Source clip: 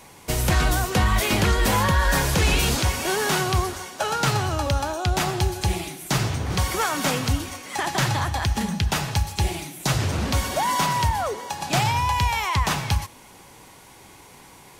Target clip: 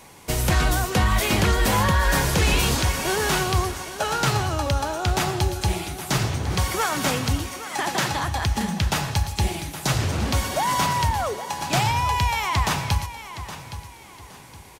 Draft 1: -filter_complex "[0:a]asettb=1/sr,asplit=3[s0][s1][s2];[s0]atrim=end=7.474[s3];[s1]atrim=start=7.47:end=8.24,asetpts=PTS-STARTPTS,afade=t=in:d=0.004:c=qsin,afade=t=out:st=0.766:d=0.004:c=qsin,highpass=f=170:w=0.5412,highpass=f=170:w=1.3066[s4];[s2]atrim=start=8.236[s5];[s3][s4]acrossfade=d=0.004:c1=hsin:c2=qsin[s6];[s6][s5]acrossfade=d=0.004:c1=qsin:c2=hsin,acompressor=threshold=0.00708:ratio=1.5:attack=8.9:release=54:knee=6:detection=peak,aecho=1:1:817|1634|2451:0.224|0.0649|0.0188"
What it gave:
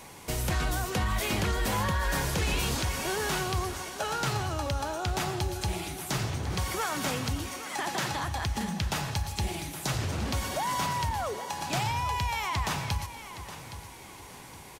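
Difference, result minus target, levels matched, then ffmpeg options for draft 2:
compression: peak gain reduction +9.5 dB
-filter_complex "[0:a]asettb=1/sr,asplit=3[s0][s1][s2];[s0]atrim=end=7.474[s3];[s1]atrim=start=7.47:end=8.24,asetpts=PTS-STARTPTS,afade=t=in:d=0.004:c=qsin,afade=t=out:st=0.766:d=0.004:c=qsin,highpass=f=170:w=0.5412,highpass=f=170:w=1.3066[s4];[s2]atrim=start=8.236[s5];[s3][s4]acrossfade=d=0.004:c1=hsin:c2=qsin[s6];[s6][s5]acrossfade=d=0.004:c1=qsin:c2=hsin,aecho=1:1:817|1634|2451:0.224|0.0649|0.0188"

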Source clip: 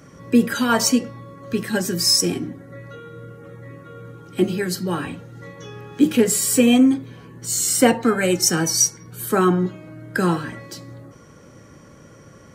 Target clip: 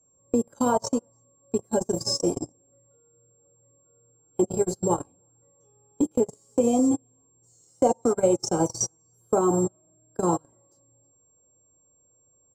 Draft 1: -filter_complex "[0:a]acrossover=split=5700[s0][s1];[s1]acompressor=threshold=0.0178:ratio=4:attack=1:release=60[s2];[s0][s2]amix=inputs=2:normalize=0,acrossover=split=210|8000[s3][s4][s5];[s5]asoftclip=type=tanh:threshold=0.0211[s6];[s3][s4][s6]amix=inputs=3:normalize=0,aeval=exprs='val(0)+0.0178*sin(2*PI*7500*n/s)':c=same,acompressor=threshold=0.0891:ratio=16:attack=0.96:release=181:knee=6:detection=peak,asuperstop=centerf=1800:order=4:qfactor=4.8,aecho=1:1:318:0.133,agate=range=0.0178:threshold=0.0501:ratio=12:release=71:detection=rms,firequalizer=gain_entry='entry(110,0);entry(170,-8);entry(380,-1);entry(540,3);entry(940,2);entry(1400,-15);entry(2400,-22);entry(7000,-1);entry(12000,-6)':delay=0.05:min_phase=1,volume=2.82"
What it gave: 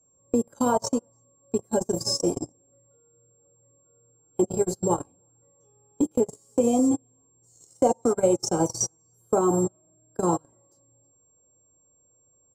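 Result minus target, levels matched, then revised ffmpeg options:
saturation: distortion -9 dB
-filter_complex "[0:a]acrossover=split=5700[s0][s1];[s1]acompressor=threshold=0.0178:ratio=4:attack=1:release=60[s2];[s0][s2]amix=inputs=2:normalize=0,acrossover=split=210|8000[s3][s4][s5];[s5]asoftclip=type=tanh:threshold=0.00631[s6];[s3][s4][s6]amix=inputs=3:normalize=0,aeval=exprs='val(0)+0.0178*sin(2*PI*7500*n/s)':c=same,acompressor=threshold=0.0891:ratio=16:attack=0.96:release=181:knee=6:detection=peak,asuperstop=centerf=1800:order=4:qfactor=4.8,aecho=1:1:318:0.133,agate=range=0.0178:threshold=0.0501:ratio=12:release=71:detection=rms,firequalizer=gain_entry='entry(110,0);entry(170,-8);entry(380,-1);entry(540,3);entry(940,2);entry(1400,-15);entry(2400,-22);entry(7000,-1);entry(12000,-6)':delay=0.05:min_phase=1,volume=2.82"

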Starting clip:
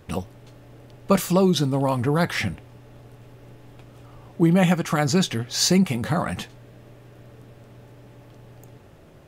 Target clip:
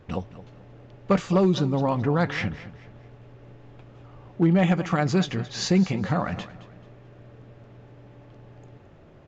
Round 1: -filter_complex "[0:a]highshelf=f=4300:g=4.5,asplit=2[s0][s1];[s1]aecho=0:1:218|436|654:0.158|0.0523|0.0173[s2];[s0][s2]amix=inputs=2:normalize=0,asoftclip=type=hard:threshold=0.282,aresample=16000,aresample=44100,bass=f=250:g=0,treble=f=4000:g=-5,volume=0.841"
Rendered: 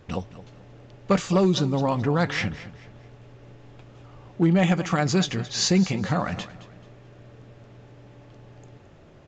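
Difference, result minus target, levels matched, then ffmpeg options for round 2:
8 kHz band +7.0 dB
-filter_complex "[0:a]highshelf=f=4300:g=-6.5,asplit=2[s0][s1];[s1]aecho=0:1:218|436|654:0.158|0.0523|0.0173[s2];[s0][s2]amix=inputs=2:normalize=0,asoftclip=type=hard:threshold=0.282,aresample=16000,aresample=44100,bass=f=250:g=0,treble=f=4000:g=-5,volume=0.841"

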